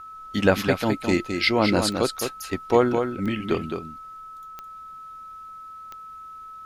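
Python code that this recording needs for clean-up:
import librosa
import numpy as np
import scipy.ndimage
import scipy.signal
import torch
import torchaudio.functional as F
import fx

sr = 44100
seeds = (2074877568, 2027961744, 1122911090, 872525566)

y = fx.fix_declick_ar(x, sr, threshold=10.0)
y = fx.notch(y, sr, hz=1300.0, q=30.0)
y = fx.fix_echo_inverse(y, sr, delay_ms=213, level_db=-6.5)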